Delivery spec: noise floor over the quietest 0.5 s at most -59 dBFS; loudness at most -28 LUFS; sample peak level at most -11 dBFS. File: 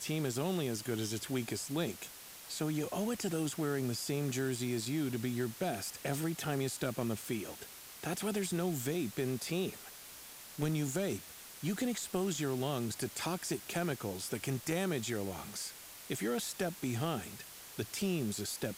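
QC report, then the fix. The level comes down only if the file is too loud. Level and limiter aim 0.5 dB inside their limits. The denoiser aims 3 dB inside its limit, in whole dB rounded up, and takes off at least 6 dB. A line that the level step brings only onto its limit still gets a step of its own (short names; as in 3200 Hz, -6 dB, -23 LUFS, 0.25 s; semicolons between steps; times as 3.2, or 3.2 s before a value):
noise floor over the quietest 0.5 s -51 dBFS: fail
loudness -36.5 LUFS: OK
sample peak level -19.5 dBFS: OK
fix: denoiser 11 dB, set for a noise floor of -51 dBFS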